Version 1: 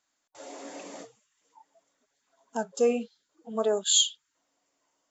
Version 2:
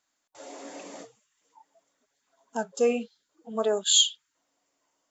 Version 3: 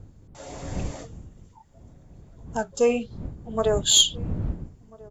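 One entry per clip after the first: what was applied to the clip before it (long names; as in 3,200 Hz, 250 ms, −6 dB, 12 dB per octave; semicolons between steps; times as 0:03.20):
dynamic equaliser 2,400 Hz, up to +4 dB, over −40 dBFS, Q 0.79
wind on the microphone 130 Hz −38 dBFS; harmonic generator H 2 −17 dB, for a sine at −7 dBFS; slap from a distant wall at 230 metres, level −23 dB; level +3 dB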